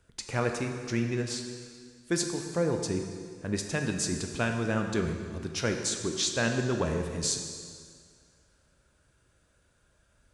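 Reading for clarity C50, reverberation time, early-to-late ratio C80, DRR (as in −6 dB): 5.5 dB, 2.0 s, 6.5 dB, 4.0 dB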